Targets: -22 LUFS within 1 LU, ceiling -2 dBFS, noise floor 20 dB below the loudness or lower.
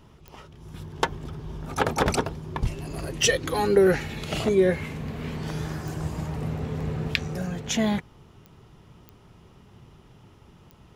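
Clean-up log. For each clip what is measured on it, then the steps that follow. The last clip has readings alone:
clicks 6; loudness -26.5 LUFS; peak -4.0 dBFS; loudness target -22.0 LUFS
-> de-click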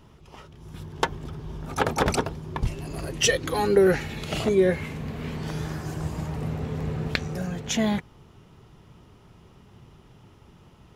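clicks 0; loudness -26.5 LUFS; peak -2.5 dBFS; loudness target -22.0 LUFS
-> gain +4.5 dB; limiter -2 dBFS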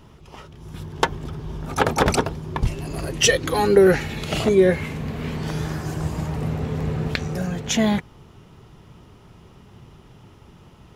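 loudness -22.0 LUFS; peak -2.0 dBFS; noise floor -49 dBFS

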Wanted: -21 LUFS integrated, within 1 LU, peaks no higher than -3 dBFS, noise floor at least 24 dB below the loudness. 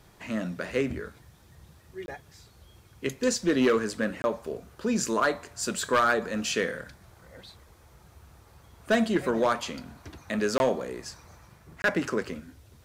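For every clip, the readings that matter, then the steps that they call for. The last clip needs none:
clipped 0.5%; flat tops at -16.5 dBFS; dropouts 4; longest dropout 21 ms; loudness -28.0 LUFS; peak -16.5 dBFS; loudness target -21.0 LUFS
-> clip repair -16.5 dBFS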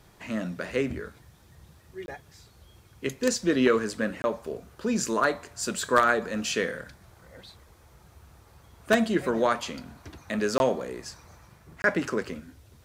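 clipped 0.0%; dropouts 4; longest dropout 21 ms
-> interpolate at 2.06/4.22/10.58/11.82, 21 ms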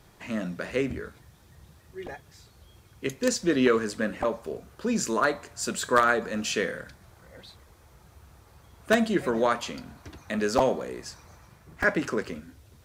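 dropouts 0; loudness -27.0 LUFS; peak -7.5 dBFS; loudness target -21.0 LUFS
-> gain +6 dB; limiter -3 dBFS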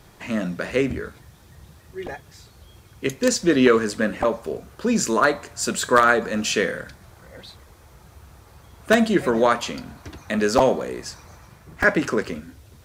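loudness -21.5 LUFS; peak -3.0 dBFS; noise floor -51 dBFS

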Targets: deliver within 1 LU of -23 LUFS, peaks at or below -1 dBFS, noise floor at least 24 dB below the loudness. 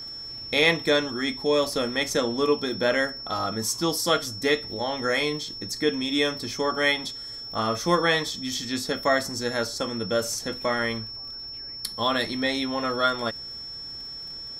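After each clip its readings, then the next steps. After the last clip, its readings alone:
ticks 29/s; steady tone 5400 Hz; tone level -35 dBFS; loudness -25.5 LUFS; peak -6.5 dBFS; loudness target -23.0 LUFS
-> de-click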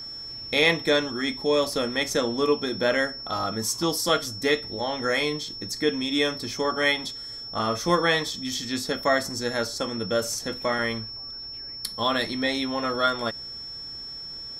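ticks 0.069/s; steady tone 5400 Hz; tone level -35 dBFS
-> notch 5400 Hz, Q 30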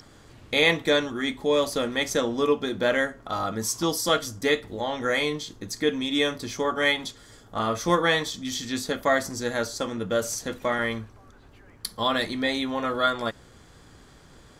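steady tone none; loudness -25.5 LUFS; peak -7.0 dBFS; loudness target -23.0 LUFS
-> gain +2.5 dB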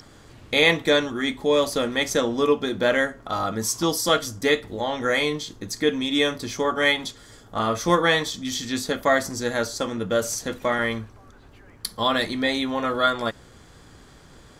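loudness -23.0 LUFS; peak -4.5 dBFS; noise floor -50 dBFS

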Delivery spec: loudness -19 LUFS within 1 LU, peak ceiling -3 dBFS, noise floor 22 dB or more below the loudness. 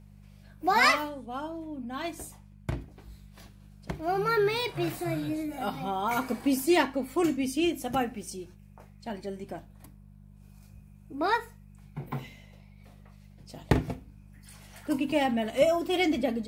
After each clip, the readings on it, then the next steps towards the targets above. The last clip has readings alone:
hum 50 Hz; harmonics up to 200 Hz; hum level -50 dBFS; loudness -29.0 LUFS; peak -8.0 dBFS; loudness target -19.0 LUFS
-> de-hum 50 Hz, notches 4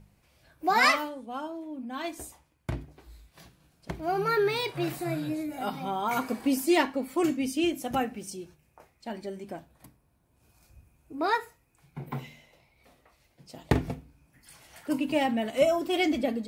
hum none; loudness -29.0 LUFS; peak -8.5 dBFS; loudness target -19.0 LUFS
-> gain +10 dB; limiter -3 dBFS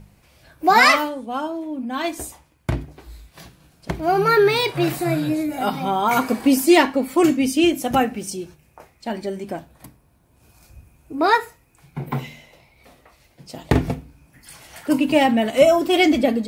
loudness -19.5 LUFS; peak -3.0 dBFS; noise floor -58 dBFS

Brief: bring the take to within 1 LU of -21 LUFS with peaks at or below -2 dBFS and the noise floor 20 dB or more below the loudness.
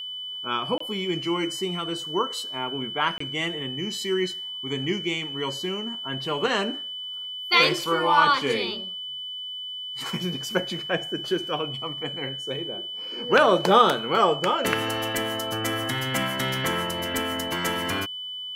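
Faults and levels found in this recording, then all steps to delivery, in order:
dropouts 2; longest dropout 24 ms; steady tone 3000 Hz; tone level -32 dBFS; loudness -25.5 LUFS; peak -4.5 dBFS; loudness target -21.0 LUFS
-> interpolate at 0.78/3.18, 24 ms; notch 3000 Hz, Q 30; gain +4.5 dB; limiter -2 dBFS

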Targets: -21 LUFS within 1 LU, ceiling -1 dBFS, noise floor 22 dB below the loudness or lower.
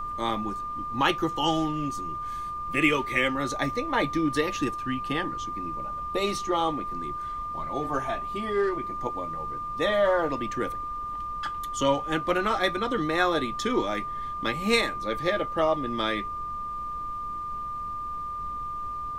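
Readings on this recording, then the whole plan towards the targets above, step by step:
steady tone 1200 Hz; tone level -31 dBFS; noise floor -34 dBFS; noise floor target -50 dBFS; loudness -28.0 LUFS; peak -8.5 dBFS; loudness target -21.0 LUFS
-> notch 1200 Hz, Q 30; noise print and reduce 16 dB; gain +7 dB

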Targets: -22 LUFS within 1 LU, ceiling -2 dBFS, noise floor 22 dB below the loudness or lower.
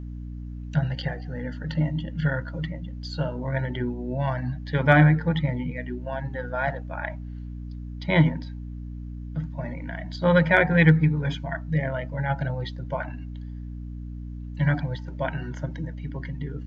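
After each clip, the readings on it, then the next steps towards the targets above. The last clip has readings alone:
hum 60 Hz; harmonics up to 300 Hz; hum level -33 dBFS; loudness -25.5 LUFS; peak -4.5 dBFS; loudness target -22.0 LUFS
-> notches 60/120/180/240/300 Hz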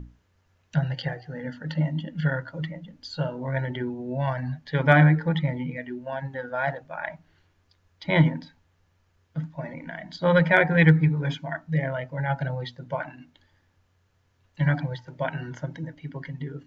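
hum none; loudness -26.0 LUFS; peak -5.0 dBFS; loudness target -22.0 LUFS
-> gain +4 dB; limiter -2 dBFS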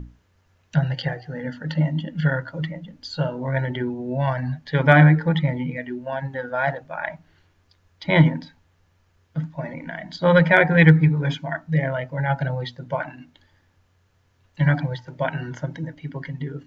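loudness -22.0 LUFS; peak -2.0 dBFS; noise floor -63 dBFS

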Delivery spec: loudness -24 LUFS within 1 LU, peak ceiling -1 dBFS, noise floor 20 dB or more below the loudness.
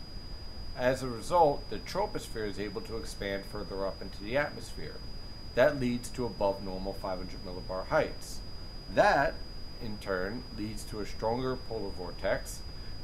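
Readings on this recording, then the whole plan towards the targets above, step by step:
steady tone 4900 Hz; tone level -49 dBFS; noise floor -44 dBFS; noise floor target -53 dBFS; loudness -33.0 LUFS; peak -10.5 dBFS; loudness target -24.0 LUFS
-> notch 4900 Hz, Q 30; noise print and reduce 9 dB; gain +9 dB

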